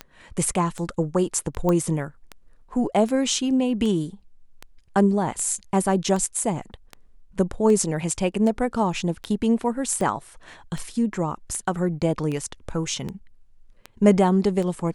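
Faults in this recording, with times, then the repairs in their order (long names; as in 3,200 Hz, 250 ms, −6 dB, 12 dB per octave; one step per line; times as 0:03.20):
scratch tick 78 rpm −18 dBFS
0:01.69: click −12 dBFS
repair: click removal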